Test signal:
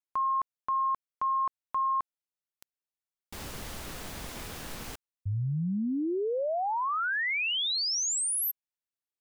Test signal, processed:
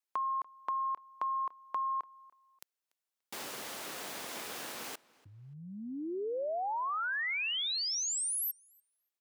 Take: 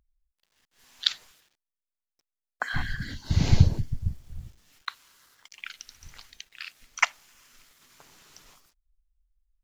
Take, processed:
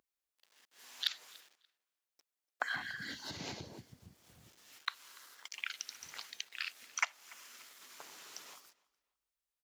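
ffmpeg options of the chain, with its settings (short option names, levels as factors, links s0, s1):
-filter_complex "[0:a]asoftclip=type=tanh:threshold=0.501,acompressor=threshold=0.01:ratio=2.5:attack=26:release=180:knee=6:detection=rms,highpass=340,asplit=2[s0][s1];[s1]adelay=290,lowpass=f=4900:p=1,volume=0.0708,asplit=2[s2][s3];[s3]adelay=290,lowpass=f=4900:p=1,volume=0.27[s4];[s0][s2][s4]amix=inputs=3:normalize=0,volume=1.41"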